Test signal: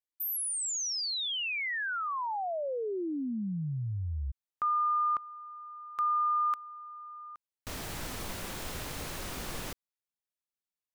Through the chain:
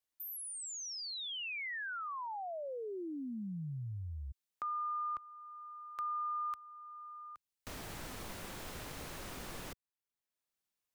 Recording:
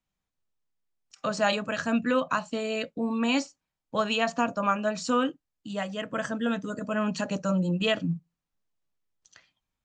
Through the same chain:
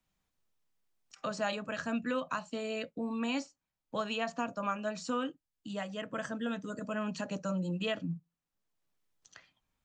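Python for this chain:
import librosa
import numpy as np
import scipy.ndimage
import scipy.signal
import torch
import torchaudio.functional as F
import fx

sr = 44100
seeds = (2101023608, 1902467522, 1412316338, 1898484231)

y = fx.band_squash(x, sr, depth_pct=40)
y = y * librosa.db_to_amplitude(-8.0)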